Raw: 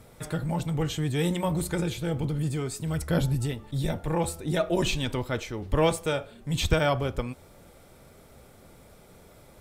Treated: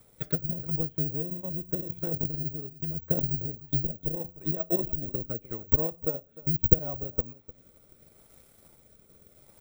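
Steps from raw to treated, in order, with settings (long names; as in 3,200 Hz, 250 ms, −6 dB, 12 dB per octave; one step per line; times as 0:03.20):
hum removal 85.65 Hz, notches 3
treble cut that deepens with the level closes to 600 Hz, closed at −25.5 dBFS
high-shelf EQ 6,300 Hz +10 dB
transient designer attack +12 dB, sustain −8 dB
rotating-speaker cabinet horn 0.8 Hz
on a send: single-tap delay 302 ms −18.5 dB
on the sum: bad sample-rate conversion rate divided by 2×, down none, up zero stuff
level −7.5 dB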